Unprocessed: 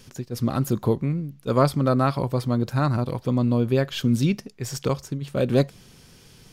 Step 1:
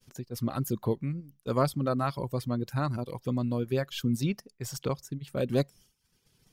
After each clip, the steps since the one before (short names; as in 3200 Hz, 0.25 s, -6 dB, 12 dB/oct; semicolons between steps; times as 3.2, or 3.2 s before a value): reverb removal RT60 0.75 s; expander -44 dBFS; high shelf 11000 Hz +7.5 dB; gain -6.5 dB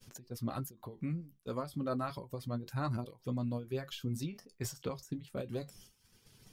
flange 0.32 Hz, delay 9 ms, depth 2.6 ms, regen -46%; reverse; compressor 5:1, threshold -43 dBFS, peak gain reduction 16 dB; reverse; ending taper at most 160 dB/s; gain +9.5 dB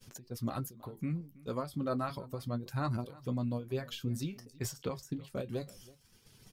echo 0.324 s -21.5 dB; gain +1.5 dB